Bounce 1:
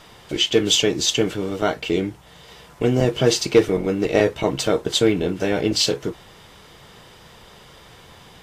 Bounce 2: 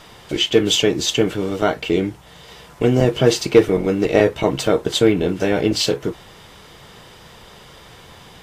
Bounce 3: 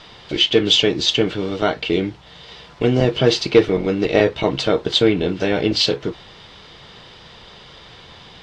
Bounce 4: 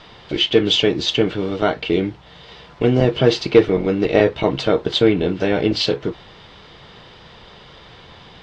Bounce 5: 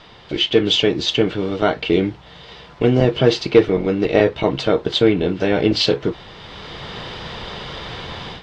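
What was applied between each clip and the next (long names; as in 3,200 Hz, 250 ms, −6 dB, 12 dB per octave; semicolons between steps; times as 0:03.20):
dynamic equaliser 5,700 Hz, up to −5 dB, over −36 dBFS, Q 0.74; level +3 dB
low-pass with resonance 4,200 Hz, resonance Q 1.9; level −1 dB
high-shelf EQ 4,100 Hz −9 dB; level +1 dB
automatic gain control gain up to 13 dB; level −1 dB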